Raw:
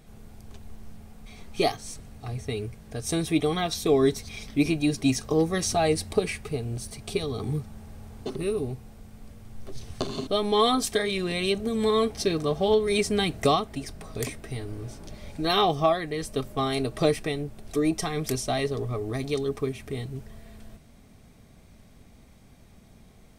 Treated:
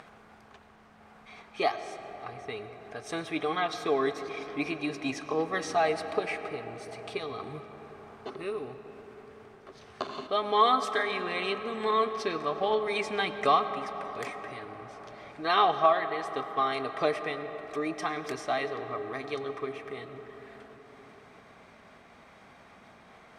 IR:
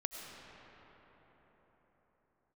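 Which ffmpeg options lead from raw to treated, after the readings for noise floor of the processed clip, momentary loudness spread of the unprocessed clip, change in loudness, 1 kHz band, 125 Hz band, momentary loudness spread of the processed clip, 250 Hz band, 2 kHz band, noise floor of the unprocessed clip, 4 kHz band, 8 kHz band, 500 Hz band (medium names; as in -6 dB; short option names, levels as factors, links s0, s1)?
-55 dBFS, 16 LU, -3.5 dB, +2.0 dB, -16.0 dB, 20 LU, -10.0 dB, +1.0 dB, -53 dBFS, -6.0 dB, -14.0 dB, -5.0 dB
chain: -filter_complex "[0:a]acompressor=mode=upward:threshold=0.02:ratio=2.5,bandpass=f=1300:t=q:w=1.2:csg=0,asplit=2[s0][s1];[1:a]atrim=start_sample=2205,highshelf=f=9200:g=-12[s2];[s1][s2]afir=irnorm=-1:irlink=0,volume=0.794[s3];[s0][s3]amix=inputs=2:normalize=0"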